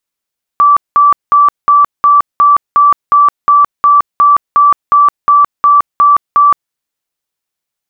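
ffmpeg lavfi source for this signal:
-f lavfi -i "aevalsrc='0.708*sin(2*PI*1160*mod(t,0.36))*lt(mod(t,0.36),193/1160)':d=6.12:s=44100"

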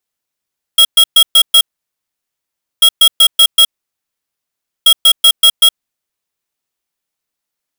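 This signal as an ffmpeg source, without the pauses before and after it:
-f lavfi -i "aevalsrc='0.531*(2*lt(mod(3290*t,1),0.5)-1)*clip(min(mod(mod(t,2.04),0.19),0.07-mod(mod(t,2.04),0.19))/0.005,0,1)*lt(mod(t,2.04),0.95)':d=6.12:s=44100"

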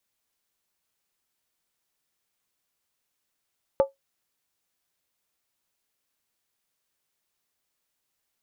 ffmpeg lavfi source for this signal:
-f lavfi -i "aevalsrc='0.251*pow(10,-3*t/0.15)*sin(2*PI*547*t)+0.0794*pow(10,-3*t/0.119)*sin(2*PI*871.9*t)+0.0251*pow(10,-3*t/0.103)*sin(2*PI*1168.4*t)+0.00794*pow(10,-3*t/0.099)*sin(2*PI*1255.9*t)+0.00251*pow(10,-3*t/0.092)*sin(2*PI*1451.2*t)':d=0.63:s=44100"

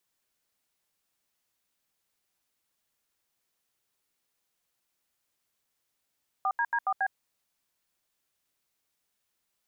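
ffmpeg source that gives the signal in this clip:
-f lavfi -i "aevalsrc='0.0447*clip(min(mod(t,0.139),0.06-mod(t,0.139))/0.002,0,1)*(eq(floor(t/0.139),0)*(sin(2*PI*770*mod(t,0.139))+sin(2*PI*1209*mod(t,0.139)))+eq(floor(t/0.139),1)*(sin(2*PI*941*mod(t,0.139))+sin(2*PI*1633*mod(t,0.139)))+eq(floor(t/0.139),2)*(sin(2*PI*941*mod(t,0.139))+sin(2*PI*1633*mod(t,0.139)))+eq(floor(t/0.139),3)*(sin(2*PI*770*mod(t,0.139))+sin(2*PI*1209*mod(t,0.139)))+eq(floor(t/0.139),4)*(sin(2*PI*770*mod(t,0.139))+sin(2*PI*1633*mod(t,0.139))))':d=0.695:s=44100"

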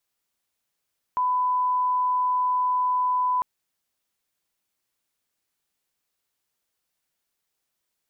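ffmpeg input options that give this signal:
-f lavfi -i "sine=f=1000:d=2.25:r=44100,volume=-1.94dB"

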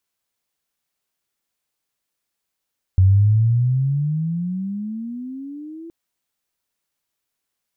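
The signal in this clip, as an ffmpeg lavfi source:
-f lavfi -i "aevalsrc='pow(10,(-9-24*t/2.92)/20)*sin(2*PI*92*2.92/(22.5*log(2)/12)*(exp(22.5*log(2)/12*t/2.92)-1))':d=2.92:s=44100"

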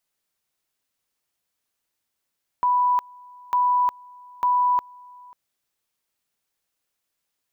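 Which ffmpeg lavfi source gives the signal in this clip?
-f lavfi -i "aevalsrc='pow(10,(-16.5-26*gte(mod(t,0.9),0.36))/20)*sin(2*PI*988*t)':d=2.7:s=44100"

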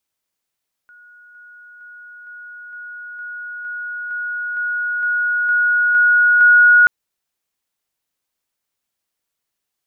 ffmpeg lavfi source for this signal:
-f lavfi -i "aevalsrc='pow(10,(-42.5+3*floor(t/0.46))/20)*sin(2*PI*1450*t)':d=5.98:s=44100"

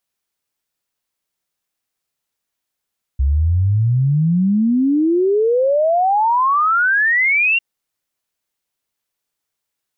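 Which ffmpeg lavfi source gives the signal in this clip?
-f lavfi -i "aevalsrc='0.251*clip(min(t,4.4-t)/0.01,0,1)*sin(2*PI*65*4.4/log(2800/65)*(exp(log(2800/65)*t/4.4)-1))':d=4.4:s=44100"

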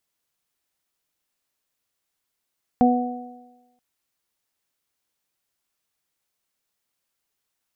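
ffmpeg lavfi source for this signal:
-f lavfi -i "aevalsrc='0.224*pow(10,-3*t/1.04)*sin(2*PI*246*t)+0.0891*pow(10,-3*t/1.1)*sin(2*PI*492*t)+0.158*pow(10,-3*t/1.12)*sin(2*PI*738*t)':d=0.98:s=44100"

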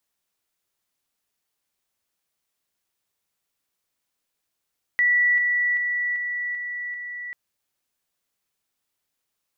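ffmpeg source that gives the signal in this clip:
-f lavfi -i "aevalsrc='pow(10,(-16-3*floor(t/0.39))/20)*sin(2*PI*1950*t)':d=2.34:s=44100"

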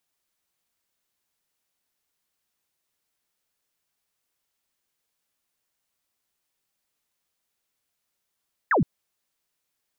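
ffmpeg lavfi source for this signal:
-f lavfi -i "aevalsrc='0.141*clip(t/0.002,0,1)*clip((0.12-t)/0.002,0,1)*sin(2*PI*2000*0.12/log(120/2000)*(exp(log(120/2000)*t/0.12)-1))':d=0.12:s=44100"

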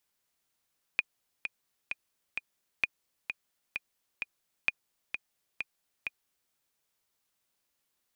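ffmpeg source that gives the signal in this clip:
-f lavfi -i "aevalsrc='pow(10,(-12-8*gte(mod(t,4*60/130),60/130))/20)*sin(2*PI*2450*mod(t,60/130))*exp(-6.91*mod(t,60/130)/0.03)':d=5.53:s=44100"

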